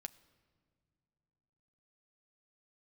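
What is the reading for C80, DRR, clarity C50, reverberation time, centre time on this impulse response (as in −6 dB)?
20.0 dB, 9.0 dB, 19.5 dB, non-exponential decay, 3 ms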